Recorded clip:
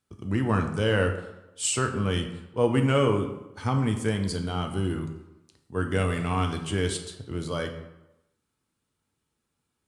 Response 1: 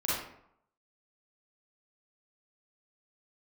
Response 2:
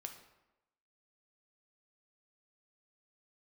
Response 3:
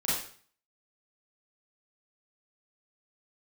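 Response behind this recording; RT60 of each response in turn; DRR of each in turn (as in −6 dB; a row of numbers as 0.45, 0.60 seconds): 2; 0.70, 0.95, 0.45 seconds; −8.5, 4.5, −9.5 decibels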